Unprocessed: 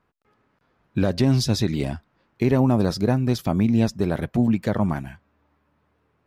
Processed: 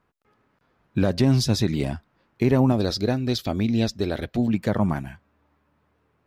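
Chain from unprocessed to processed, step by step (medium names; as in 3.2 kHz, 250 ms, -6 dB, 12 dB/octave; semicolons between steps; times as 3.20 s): 2.72–4.54 s: fifteen-band graphic EQ 160 Hz -10 dB, 1 kHz -7 dB, 4 kHz +9 dB, 10 kHz -5 dB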